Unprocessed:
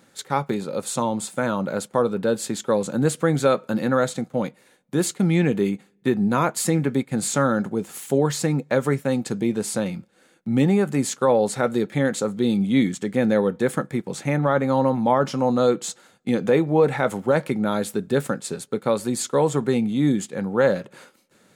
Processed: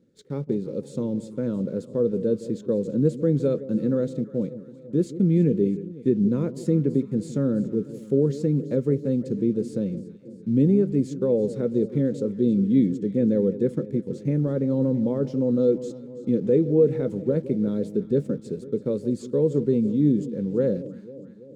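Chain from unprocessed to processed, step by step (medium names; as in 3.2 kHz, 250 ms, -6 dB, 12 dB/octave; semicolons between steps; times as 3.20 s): in parallel at -6.5 dB: bit crusher 6-bit; on the sum: FFT filter 480 Hz 0 dB, 750 Hz -25 dB, 5.3 kHz -17 dB, 12 kHz -28 dB; echo whose repeats swap between lows and highs 166 ms, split 870 Hz, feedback 75%, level -14 dB; trim -3.5 dB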